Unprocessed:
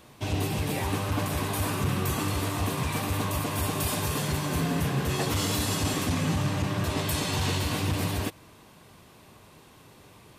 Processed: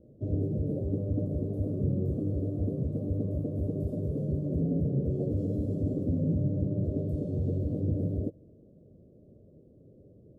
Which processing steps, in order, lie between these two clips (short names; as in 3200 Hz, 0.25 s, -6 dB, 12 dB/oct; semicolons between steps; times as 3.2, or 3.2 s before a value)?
elliptic low-pass 570 Hz, stop band 40 dB